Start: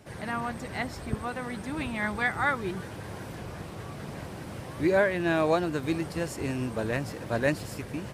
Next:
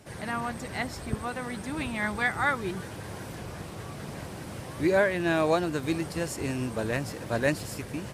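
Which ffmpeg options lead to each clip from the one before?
ffmpeg -i in.wav -af "equalizer=frequency=9100:width_type=o:width=2:gain=4.5" out.wav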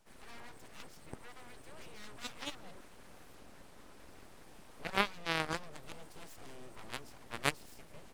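ffmpeg -i in.wav -af "aeval=exprs='abs(val(0))':channel_layout=same,aeval=exprs='0.316*(cos(1*acos(clip(val(0)/0.316,-1,1)))-cos(1*PI/2))+0.126*(cos(3*acos(clip(val(0)/0.316,-1,1)))-cos(3*PI/2))':channel_layout=same" out.wav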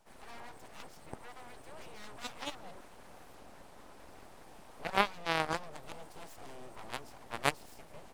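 ffmpeg -i in.wav -af "equalizer=frequency=780:width=1.2:gain=6.5" out.wav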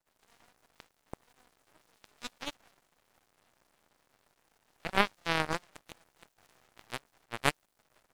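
ffmpeg -i in.wav -af "aeval=exprs='max(val(0),0)':channel_layout=same,volume=2.5dB" out.wav

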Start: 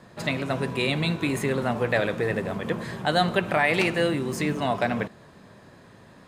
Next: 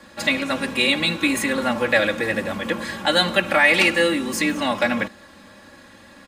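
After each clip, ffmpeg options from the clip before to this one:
ffmpeg -i in.wav -filter_complex "[0:a]acrossover=split=170|1300[link_01][link_02][link_03];[link_03]acontrast=79[link_04];[link_01][link_02][link_04]amix=inputs=3:normalize=0,aecho=1:1:3.6:0.94" out.wav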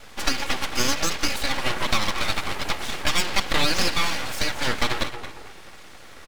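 ffmpeg -i in.wav -filter_complex "[0:a]asplit=2[link_01][link_02];[link_02]adelay=224,lowpass=frequency=2000:poles=1,volume=-11.5dB,asplit=2[link_03][link_04];[link_04]adelay=224,lowpass=frequency=2000:poles=1,volume=0.34,asplit=2[link_05][link_06];[link_06]adelay=224,lowpass=frequency=2000:poles=1,volume=0.34,asplit=2[link_07][link_08];[link_08]adelay=224,lowpass=frequency=2000:poles=1,volume=0.34[link_09];[link_01][link_03][link_05][link_07][link_09]amix=inputs=5:normalize=0,acrossover=split=580|4400[link_10][link_11][link_12];[link_10]acompressor=threshold=-35dB:ratio=4[link_13];[link_11]acompressor=threshold=-20dB:ratio=4[link_14];[link_12]acompressor=threshold=-43dB:ratio=4[link_15];[link_13][link_14][link_15]amix=inputs=3:normalize=0,aeval=exprs='abs(val(0))':channel_layout=same,volume=3.5dB" out.wav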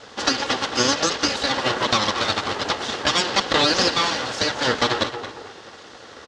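ffmpeg -i in.wav -af "highpass=110,equalizer=frequency=160:width_type=q:width=4:gain=-7,equalizer=frequency=460:width_type=q:width=4:gain=5,equalizer=frequency=2300:width_type=q:width=4:gain=-9,lowpass=frequency=6500:width=0.5412,lowpass=frequency=6500:width=1.3066,volume=5.5dB" out.wav

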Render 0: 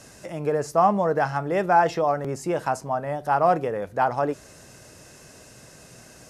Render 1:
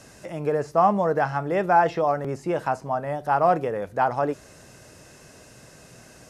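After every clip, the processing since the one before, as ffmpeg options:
ffmpeg -i in.wav -filter_complex "[0:a]acrossover=split=3900[link_01][link_02];[link_02]acompressor=threshold=-51dB:ratio=4:attack=1:release=60[link_03];[link_01][link_03]amix=inputs=2:normalize=0" out.wav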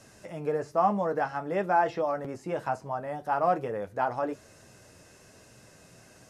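ffmpeg -i in.wav -af "flanger=delay=9:depth=2:regen=-42:speed=1.1:shape=sinusoidal,volume=-2dB" out.wav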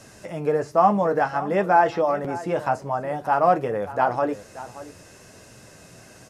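ffmpeg -i in.wav -af "aecho=1:1:578:0.158,volume=7dB" out.wav

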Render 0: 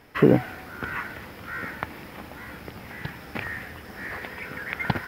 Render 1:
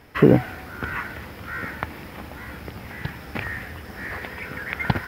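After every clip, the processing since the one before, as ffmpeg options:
ffmpeg -i in.wav -af "equalizer=frequency=64:width=0.78:gain=6,volume=2dB" out.wav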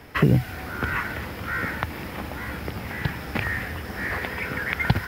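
ffmpeg -i in.wav -filter_complex "[0:a]acrossover=split=160|3000[link_01][link_02][link_03];[link_02]acompressor=threshold=-28dB:ratio=6[link_04];[link_01][link_04][link_03]amix=inputs=3:normalize=0,volume=4.5dB" out.wav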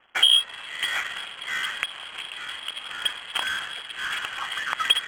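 ffmpeg -i in.wav -af "aeval=exprs='sgn(val(0))*max(abs(val(0))-0.00376,0)':channel_layout=same,lowpass=frequency=2900:width_type=q:width=0.5098,lowpass=frequency=2900:width_type=q:width=0.6013,lowpass=frequency=2900:width_type=q:width=0.9,lowpass=frequency=2900:width_type=q:width=2.563,afreqshift=-3400,adynamicsmooth=sensitivity=5:basefreq=1400" out.wav

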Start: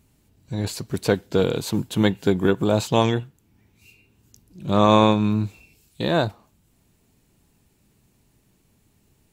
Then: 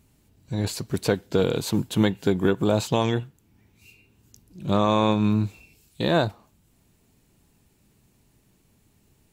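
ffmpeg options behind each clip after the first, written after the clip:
ffmpeg -i in.wav -af "alimiter=limit=-9dB:level=0:latency=1:release=235" out.wav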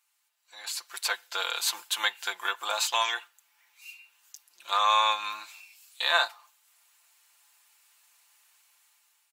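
ffmpeg -i in.wav -af "highpass=frequency=1000:width=0.5412,highpass=frequency=1000:width=1.3066,aecho=1:1:5.8:0.57,dynaudnorm=framelen=370:gausssize=5:maxgain=11dB,volume=-6dB" out.wav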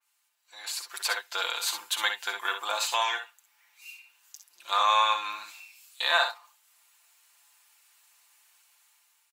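ffmpeg -i in.wav -filter_complex "[0:a]asplit=2[link_01][link_02];[link_02]aecho=0:1:54|64:0.282|0.376[link_03];[link_01][link_03]amix=inputs=2:normalize=0,adynamicequalizer=threshold=0.0158:dfrequency=2900:dqfactor=0.7:tfrequency=2900:tqfactor=0.7:attack=5:release=100:ratio=0.375:range=2.5:mode=cutabove:tftype=highshelf" out.wav

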